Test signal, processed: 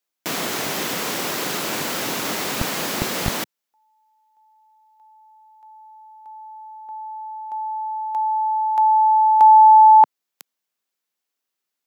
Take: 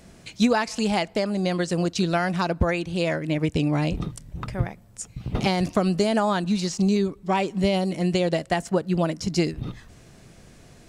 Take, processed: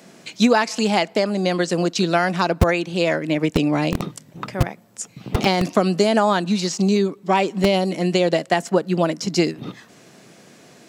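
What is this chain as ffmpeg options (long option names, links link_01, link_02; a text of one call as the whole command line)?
ffmpeg -i in.wav -filter_complex "[0:a]equalizer=frequency=9200:width=7.9:gain=-9.5,acrossover=split=160|1800[link_01][link_02][link_03];[link_01]acrusher=bits=3:mix=0:aa=0.000001[link_04];[link_04][link_02][link_03]amix=inputs=3:normalize=0,volume=5.5dB" out.wav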